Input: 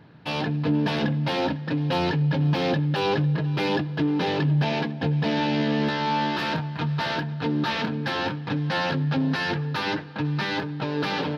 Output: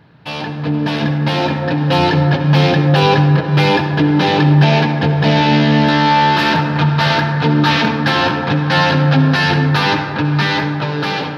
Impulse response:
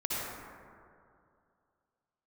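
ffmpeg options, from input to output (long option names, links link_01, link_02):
-filter_complex "[0:a]asplit=2[link_01][link_02];[1:a]atrim=start_sample=2205[link_03];[link_02][link_03]afir=irnorm=-1:irlink=0,volume=-9.5dB[link_04];[link_01][link_04]amix=inputs=2:normalize=0,dynaudnorm=framelen=560:gausssize=5:maxgain=11.5dB,equalizer=frequency=300:width_type=o:width=1.7:gain=-4,volume=2.5dB"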